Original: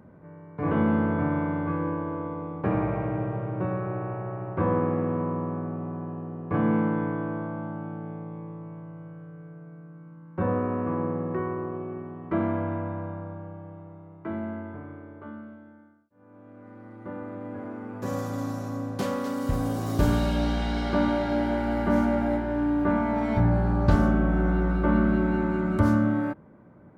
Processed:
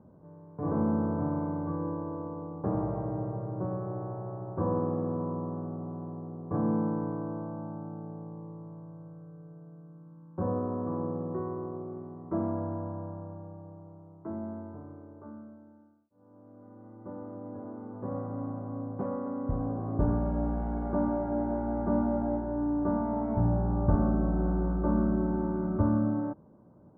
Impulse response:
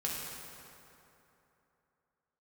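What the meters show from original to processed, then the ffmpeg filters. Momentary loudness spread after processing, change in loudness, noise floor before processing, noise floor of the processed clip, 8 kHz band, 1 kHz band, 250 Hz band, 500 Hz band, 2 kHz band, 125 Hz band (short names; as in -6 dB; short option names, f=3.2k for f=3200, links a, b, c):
19 LU, -5.0 dB, -51 dBFS, -55 dBFS, under -25 dB, -6.0 dB, -4.5 dB, -4.5 dB, -17.0 dB, -4.5 dB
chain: -af "lowpass=f=1.1k:w=0.5412,lowpass=f=1.1k:w=1.3066,volume=-4.5dB"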